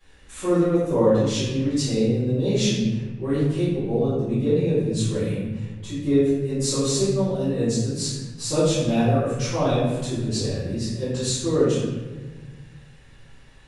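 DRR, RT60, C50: −15.5 dB, 1.3 s, −2.0 dB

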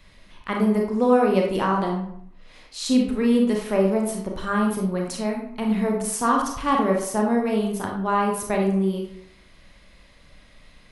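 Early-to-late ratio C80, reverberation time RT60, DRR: 7.5 dB, 0.65 s, 0.0 dB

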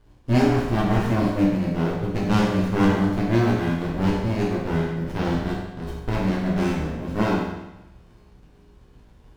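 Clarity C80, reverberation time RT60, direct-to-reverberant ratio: 3.5 dB, 0.95 s, −5.0 dB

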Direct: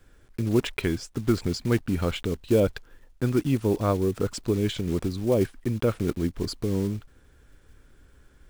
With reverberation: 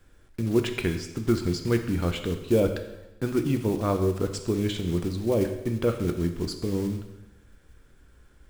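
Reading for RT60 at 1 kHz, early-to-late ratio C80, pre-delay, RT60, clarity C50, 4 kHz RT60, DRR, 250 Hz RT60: 1.0 s, 10.5 dB, 4 ms, 1.0 s, 9.0 dB, 0.95 s, 5.5 dB, 1.1 s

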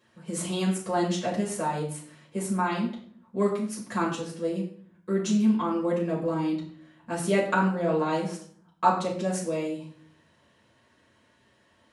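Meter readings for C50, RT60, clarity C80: 7.0 dB, 0.55 s, 10.0 dB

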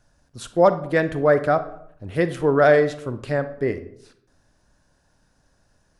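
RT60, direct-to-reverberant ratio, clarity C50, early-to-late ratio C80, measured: 0.70 s, 11.0 dB, 13.0 dB, 16.5 dB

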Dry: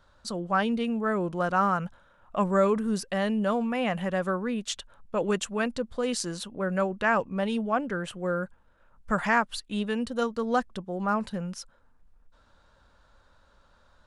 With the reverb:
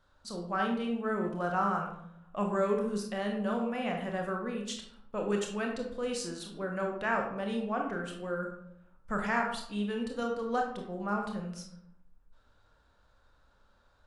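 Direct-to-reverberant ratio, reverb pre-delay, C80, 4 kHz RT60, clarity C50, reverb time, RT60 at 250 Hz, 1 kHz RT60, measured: 1.0 dB, 22 ms, 8.0 dB, 0.45 s, 5.0 dB, 0.70 s, 0.90 s, 0.65 s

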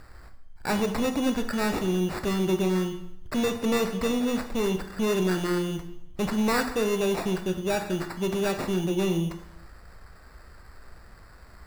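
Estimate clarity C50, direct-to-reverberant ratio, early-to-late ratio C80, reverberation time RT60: 9.5 dB, 6.0 dB, 12.0 dB, 0.75 s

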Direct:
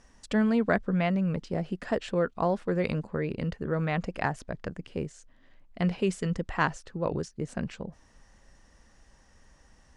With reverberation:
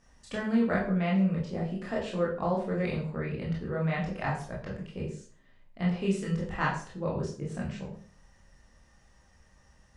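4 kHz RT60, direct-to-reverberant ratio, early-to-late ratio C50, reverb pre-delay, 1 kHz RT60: 0.35 s, −5.0 dB, 5.5 dB, 18 ms, 0.40 s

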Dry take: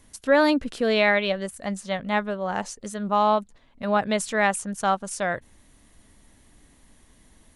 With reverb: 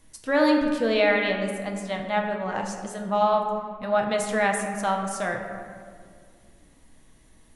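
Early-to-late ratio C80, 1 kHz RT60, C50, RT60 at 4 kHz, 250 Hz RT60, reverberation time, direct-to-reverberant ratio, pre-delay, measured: 6.0 dB, 1.8 s, 4.5 dB, 1.1 s, 2.7 s, 2.1 s, 1.5 dB, 6 ms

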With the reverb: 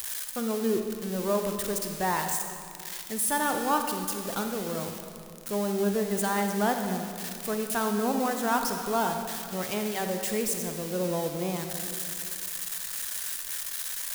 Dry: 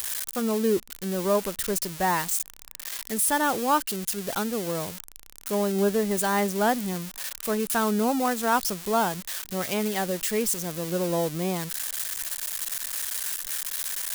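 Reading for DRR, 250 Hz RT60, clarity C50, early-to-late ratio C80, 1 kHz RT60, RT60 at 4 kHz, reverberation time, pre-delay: 4.5 dB, 2.7 s, 5.0 dB, 6.0 dB, 2.2 s, 1.7 s, 2.3 s, 38 ms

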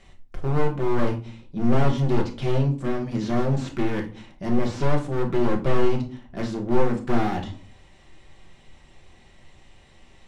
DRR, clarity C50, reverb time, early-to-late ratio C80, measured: 1.5 dB, 12.0 dB, 0.40 s, 17.5 dB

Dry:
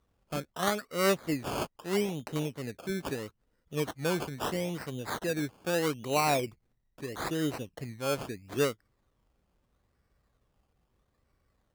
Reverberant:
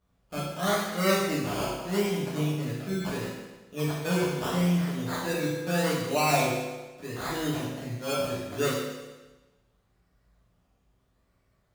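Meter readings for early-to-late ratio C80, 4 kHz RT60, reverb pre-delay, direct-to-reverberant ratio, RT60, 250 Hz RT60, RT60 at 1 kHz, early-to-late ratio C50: 3.0 dB, 1.2 s, 6 ms, −8.5 dB, 1.2 s, 1.2 s, 1.2 s, 0.0 dB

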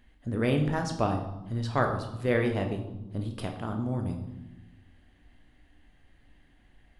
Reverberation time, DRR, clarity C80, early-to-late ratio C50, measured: 1.1 s, 3.5 dB, 10.0 dB, 8.0 dB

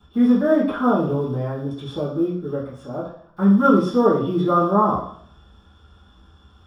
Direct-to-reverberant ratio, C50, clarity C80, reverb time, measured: −10.5 dB, 5.0 dB, 9.0 dB, 0.60 s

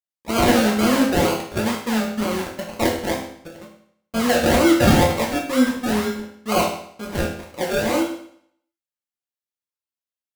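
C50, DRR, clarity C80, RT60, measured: 5.0 dB, −2.5 dB, 8.5 dB, 0.65 s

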